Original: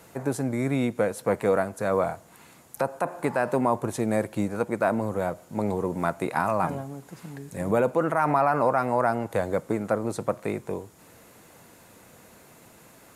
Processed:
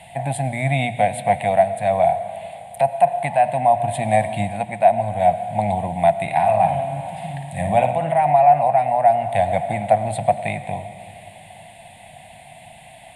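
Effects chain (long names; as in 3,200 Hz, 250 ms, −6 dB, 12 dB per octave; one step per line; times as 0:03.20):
drawn EQ curve 150 Hz 0 dB, 430 Hz −27 dB, 720 Hz +12 dB, 1,300 Hz −25 dB, 1,900 Hz +2 dB, 3,400 Hz +5 dB, 6,000 Hz −24 dB, 9,000 Hz +2 dB, 13,000 Hz −21 dB
0:06.22–0:08.18: flutter between parallel walls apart 9.6 metres, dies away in 0.48 s
convolution reverb RT60 3.0 s, pre-delay 55 ms, DRR 12 dB
speech leveller within 3 dB 0.5 s
mains-hum notches 60/120 Hz
level +6.5 dB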